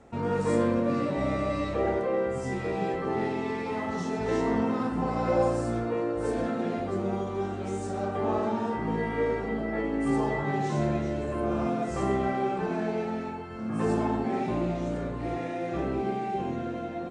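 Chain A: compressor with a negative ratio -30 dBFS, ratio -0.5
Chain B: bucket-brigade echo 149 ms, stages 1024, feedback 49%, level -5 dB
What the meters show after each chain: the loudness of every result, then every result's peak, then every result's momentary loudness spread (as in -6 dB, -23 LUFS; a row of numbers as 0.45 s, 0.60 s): -31.5 LUFS, -28.0 LUFS; -17.0 dBFS, -12.5 dBFS; 4 LU, 5 LU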